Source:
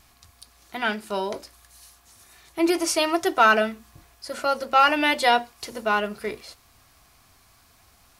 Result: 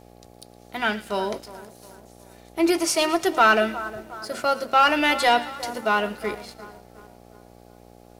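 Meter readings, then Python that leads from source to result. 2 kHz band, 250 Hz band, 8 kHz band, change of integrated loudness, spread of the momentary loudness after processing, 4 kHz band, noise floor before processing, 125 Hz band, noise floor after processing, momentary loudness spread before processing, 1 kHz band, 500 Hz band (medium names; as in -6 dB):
+0.5 dB, +1.0 dB, +1.5 dB, +0.5 dB, 18 LU, +1.0 dB, -58 dBFS, no reading, -50 dBFS, 19 LU, +0.5 dB, +1.0 dB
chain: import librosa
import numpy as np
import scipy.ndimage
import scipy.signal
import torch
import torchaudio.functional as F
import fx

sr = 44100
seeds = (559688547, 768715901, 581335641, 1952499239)

y = fx.echo_split(x, sr, split_hz=1600.0, low_ms=360, high_ms=113, feedback_pct=52, wet_db=-15.5)
y = fx.leveller(y, sr, passes=1)
y = fx.dmg_buzz(y, sr, base_hz=60.0, harmonics=14, level_db=-47.0, tilt_db=-1, odd_only=False)
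y = F.gain(torch.from_numpy(y), -2.5).numpy()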